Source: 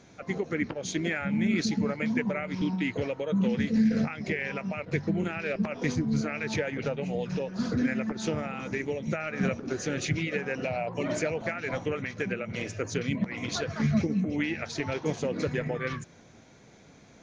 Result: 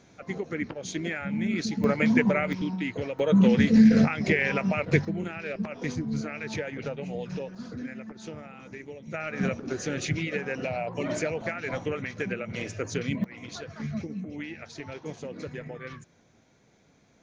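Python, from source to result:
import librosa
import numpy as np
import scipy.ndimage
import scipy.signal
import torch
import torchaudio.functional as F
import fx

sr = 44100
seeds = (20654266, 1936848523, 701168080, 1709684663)

y = fx.gain(x, sr, db=fx.steps((0.0, -2.0), (1.84, 6.5), (2.53, -1.5), (3.19, 7.0), (5.05, -3.0), (7.55, -10.0), (9.14, 0.0), (13.24, -8.0)))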